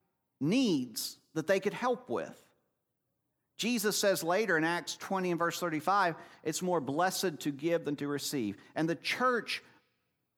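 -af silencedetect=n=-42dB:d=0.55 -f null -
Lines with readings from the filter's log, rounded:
silence_start: 2.31
silence_end: 3.59 | silence_duration: 1.28
silence_start: 9.58
silence_end: 10.37 | silence_duration: 0.79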